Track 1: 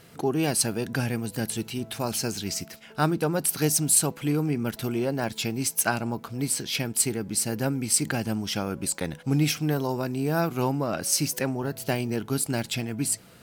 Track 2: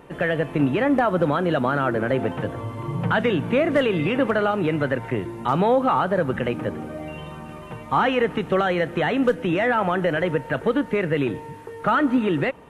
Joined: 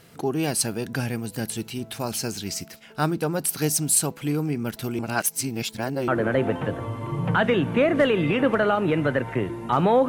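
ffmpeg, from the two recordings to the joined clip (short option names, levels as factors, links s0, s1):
-filter_complex "[0:a]apad=whole_dur=10.08,atrim=end=10.08,asplit=2[s0][s1];[s0]atrim=end=4.992[s2];[s1]atrim=start=4.988:end=6.082,asetpts=PTS-STARTPTS,areverse[s3];[1:a]atrim=start=1.838:end=5.84[s4];[s2][s3]acrossfade=d=0.004:c1=hsin:c2=hsin[s5];[s5][s4]acrossfade=d=0.004:c1=hsin:c2=hsin"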